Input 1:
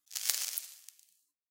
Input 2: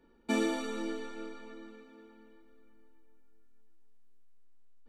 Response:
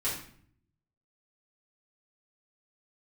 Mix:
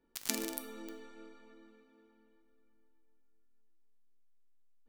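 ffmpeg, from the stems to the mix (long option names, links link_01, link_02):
-filter_complex "[0:a]equalizer=frequency=2200:width_type=o:width=0.36:gain=7,aeval=exprs='val(0)*gte(abs(val(0)),0.0794)':channel_layout=same,volume=-4dB,asplit=2[link_01][link_02];[link_02]volume=-14dB[link_03];[1:a]volume=-10.5dB[link_04];[2:a]atrim=start_sample=2205[link_05];[link_03][link_05]afir=irnorm=-1:irlink=0[link_06];[link_01][link_04][link_06]amix=inputs=3:normalize=0"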